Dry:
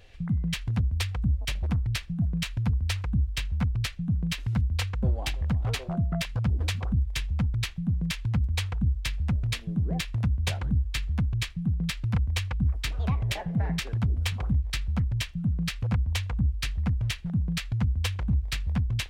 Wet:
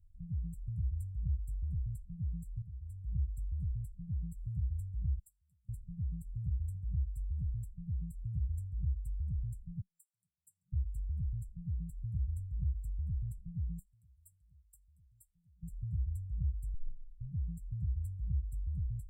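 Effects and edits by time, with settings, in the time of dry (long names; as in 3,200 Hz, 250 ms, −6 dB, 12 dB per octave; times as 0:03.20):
0:02.62–0:03.13: fade in quadratic, from −13 dB
0:05.19–0:05.69: first difference
0:09.80–0:10.72: high-pass filter 910 Hz → 320 Hz 24 dB per octave
0:13.79–0:15.63: first-order pre-emphasis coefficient 0.97
0:16.74: tape start 0.70 s
whole clip: brick-wall band-stop 190–7,300 Hz; guitar amp tone stack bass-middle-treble 10-0-1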